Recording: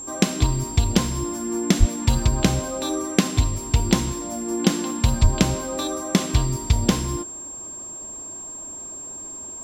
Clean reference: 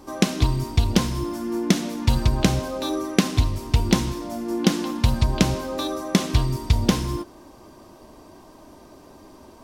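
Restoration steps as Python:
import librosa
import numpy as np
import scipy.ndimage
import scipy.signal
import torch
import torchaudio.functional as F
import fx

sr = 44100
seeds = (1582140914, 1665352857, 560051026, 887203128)

y = fx.notch(x, sr, hz=7500.0, q=30.0)
y = fx.highpass(y, sr, hz=140.0, slope=24, at=(1.79, 1.91), fade=0.02)
y = fx.highpass(y, sr, hz=140.0, slope=24, at=(5.22, 5.34), fade=0.02)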